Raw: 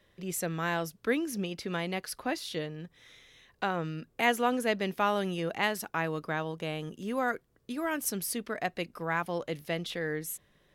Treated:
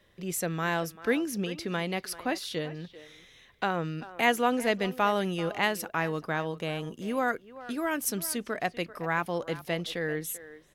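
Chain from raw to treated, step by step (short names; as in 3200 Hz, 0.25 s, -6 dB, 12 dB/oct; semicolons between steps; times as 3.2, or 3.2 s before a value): speakerphone echo 0.39 s, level -15 dB; gain +2 dB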